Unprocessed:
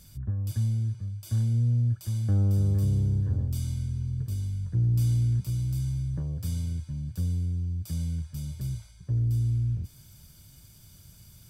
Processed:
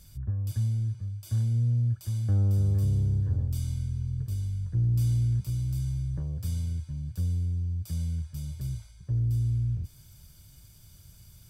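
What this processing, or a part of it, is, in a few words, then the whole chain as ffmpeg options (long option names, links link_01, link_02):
low shelf boost with a cut just above: -af "lowshelf=frequency=76:gain=6,equalizer=frequency=220:width_type=o:width=1:gain=-3.5,volume=-2dB"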